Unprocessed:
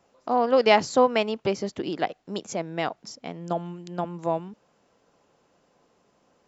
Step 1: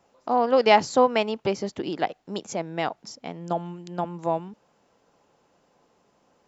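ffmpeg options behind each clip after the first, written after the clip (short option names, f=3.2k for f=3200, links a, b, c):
-af "equalizer=f=860:t=o:w=0.27:g=3.5"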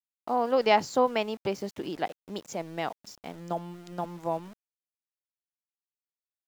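-af "aeval=exprs='val(0)*gte(abs(val(0)),0.00841)':c=same,volume=-5dB"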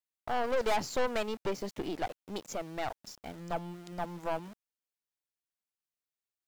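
-af "aeval=exprs='(tanh(28.2*val(0)+0.65)-tanh(0.65))/28.2':c=same,volume=2.5dB"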